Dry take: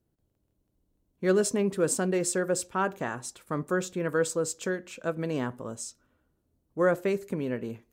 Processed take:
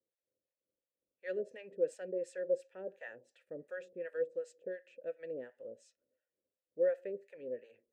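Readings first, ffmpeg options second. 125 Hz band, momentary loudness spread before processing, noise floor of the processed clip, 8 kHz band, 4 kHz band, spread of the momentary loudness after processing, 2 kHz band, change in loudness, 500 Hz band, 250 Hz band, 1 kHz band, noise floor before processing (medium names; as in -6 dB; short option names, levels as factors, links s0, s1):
-28.5 dB, 10 LU, under -85 dBFS, under -30 dB, under -20 dB, 16 LU, -15.5 dB, -10.5 dB, -8.0 dB, -21.0 dB, -26.5 dB, -76 dBFS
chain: -filter_complex "[0:a]acrossover=split=690[s0][s1];[s0]aeval=exprs='val(0)*(1-1/2+1/2*cos(2*PI*2.8*n/s))':c=same[s2];[s1]aeval=exprs='val(0)*(1-1/2-1/2*cos(2*PI*2.8*n/s))':c=same[s3];[s2][s3]amix=inputs=2:normalize=0,asplit=3[s4][s5][s6];[s4]bandpass=f=530:t=q:w=8,volume=1[s7];[s5]bandpass=f=1840:t=q:w=8,volume=0.501[s8];[s6]bandpass=f=2480:t=q:w=8,volume=0.355[s9];[s7][s8][s9]amix=inputs=3:normalize=0,adynamicequalizer=threshold=0.00112:dfrequency=3000:dqfactor=0.79:tfrequency=3000:tqfactor=0.79:attack=5:release=100:ratio=0.375:range=2:mode=cutabove:tftype=bell,volume=1.19"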